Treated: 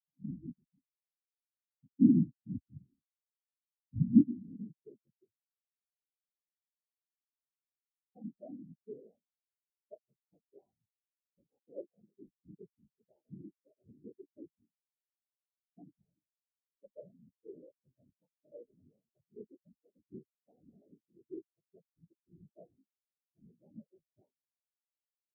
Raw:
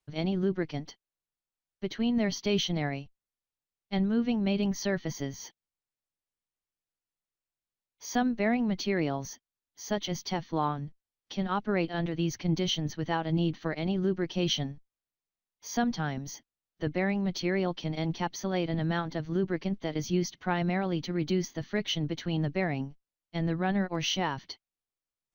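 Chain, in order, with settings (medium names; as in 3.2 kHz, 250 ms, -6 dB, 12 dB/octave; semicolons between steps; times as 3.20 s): low-pass sweep 240 Hz -> 560 Hz, 4.00–5.26 s; whisper effect; spectral contrast expander 4:1; trim -2.5 dB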